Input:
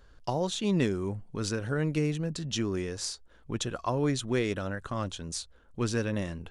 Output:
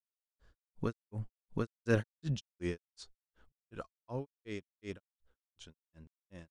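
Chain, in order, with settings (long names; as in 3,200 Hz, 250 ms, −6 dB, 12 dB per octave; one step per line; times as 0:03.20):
source passing by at 0:01.88, 12 m/s, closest 2.2 metres
granular cloud 191 ms, grains 2.7 per second, spray 481 ms
level +14 dB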